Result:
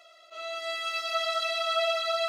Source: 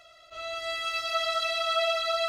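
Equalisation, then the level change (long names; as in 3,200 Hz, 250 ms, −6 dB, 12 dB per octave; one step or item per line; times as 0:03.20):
elliptic high-pass filter 320 Hz, stop band 40 dB
Butterworth band-reject 1,600 Hz, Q 4.5
0.0 dB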